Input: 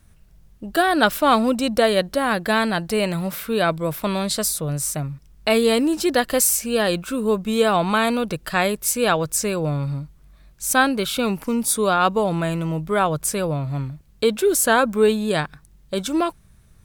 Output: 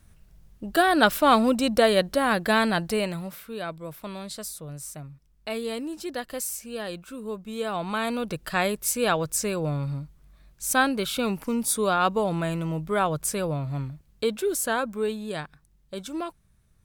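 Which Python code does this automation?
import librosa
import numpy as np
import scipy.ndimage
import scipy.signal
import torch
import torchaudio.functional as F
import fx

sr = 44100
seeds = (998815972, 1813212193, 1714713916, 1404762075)

y = fx.gain(x, sr, db=fx.line((2.84, -2.0), (3.46, -13.5), (7.49, -13.5), (8.4, -4.5), (13.84, -4.5), (15.06, -11.0)))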